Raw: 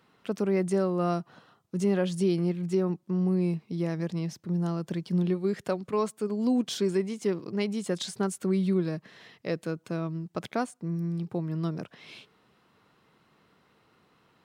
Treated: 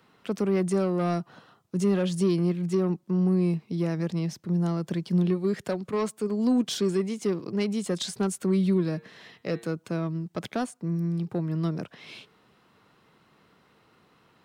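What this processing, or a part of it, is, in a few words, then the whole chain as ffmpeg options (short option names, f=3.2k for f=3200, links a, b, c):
one-band saturation: -filter_complex "[0:a]asettb=1/sr,asplit=3[a][b][c];[a]atrim=end=8.834[d];[b]atrim=start=8.83:end=9.67,asetpts=PTS-STARTPTS,afade=t=in:d=0.004:c=qsin,afade=t=out:st=0.836:d=0.004:c=qsin,bandreject=f=115.7:t=h:w=4,bandreject=f=231.4:t=h:w=4,bandreject=f=347.1:t=h:w=4,bandreject=f=462.8:t=h:w=4,bandreject=f=578.5:t=h:w=4,bandreject=f=694.2:t=h:w=4,bandreject=f=809.9:t=h:w=4,bandreject=f=925.6:t=h:w=4,bandreject=f=1.0413k:t=h:w=4,bandreject=f=1.157k:t=h:w=4,bandreject=f=1.2727k:t=h:w=4,bandreject=f=1.3884k:t=h:w=4,bandreject=f=1.5041k:t=h:w=4,bandreject=f=1.6198k:t=h:w=4,bandreject=f=1.7355k:t=h:w=4,bandreject=f=1.8512k:t=h:w=4,bandreject=f=1.9669k:t=h:w=4,bandreject=f=2.0826k:t=h:w=4,bandreject=f=2.1983k:t=h:w=4,bandreject=f=2.314k:t=h:w=4,bandreject=f=2.4297k:t=h:w=4,bandreject=f=2.5454k:t=h:w=4,bandreject=f=2.6611k:t=h:w=4,bandreject=f=2.7768k:t=h:w=4,bandreject=f=2.8925k:t=h:w=4,bandreject=f=3.0082k:t=h:w=4,bandreject=f=3.1239k:t=h:w=4,bandreject=f=3.2396k:t=h:w=4,bandreject=f=3.3553k:t=h:w=4,bandreject=f=3.471k:t=h:w=4,bandreject=f=3.5867k:t=h:w=4,bandreject=f=3.7024k:t=h:w=4,bandreject=f=3.8181k:t=h:w=4,bandreject=f=3.9338k:t=h:w=4,bandreject=f=4.0495k:t=h:w=4,bandreject=f=4.1652k:t=h:w=4[e];[c]atrim=start=9.666[f];[d][e]acrossfade=d=0.004:c1=hsin:c2=qsin[g];[g][f]acrossfade=d=0.004:c1=qsin:c2=hsin,acrossover=split=290|4100[h][i][j];[i]asoftclip=type=tanh:threshold=-27.5dB[k];[h][k][j]amix=inputs=3:normalize=0,volume=3dB"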